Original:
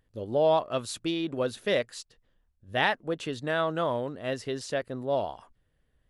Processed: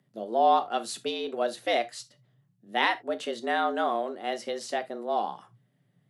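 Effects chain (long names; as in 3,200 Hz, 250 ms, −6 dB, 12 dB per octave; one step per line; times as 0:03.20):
frequency shifter +110 Hz
reverb whose tail is shaped and stops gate 100 ms falling, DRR 9.5 dB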